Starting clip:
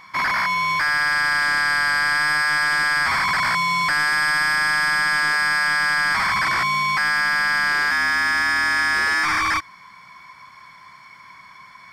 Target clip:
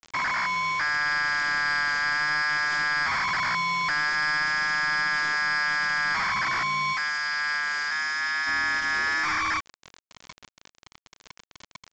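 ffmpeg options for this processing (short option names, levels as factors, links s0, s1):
-filter_complex "[0:a]acompressor=threshold=0.0398:ratio=3,asettb=1/sr,asplit=3[s0][s1][s2];[s0]atrim=end=6.934[s3];[s1]atrim=start=6.93:end=8.47,asetpts=PTS-STARTPTS,afade=t=in:d=0.004:c=qsin,afade=t=out:st=1.536:d=0.004:c=qsin,highpass=f=1100:p=1[s4];[s2]atrim=start=8.466[s5];[s3][s4]acrossfade=d=0.004:c1=hsin:c2=qsin[s6];[s6][s5]acrossfade=d=0.004:c1=qsin:c2=hsin,aecho=1:1:107:0.126,acrusher=bits=5:mix=0:aa=0.000001" -ar 16000 -c:a pcm_mulaw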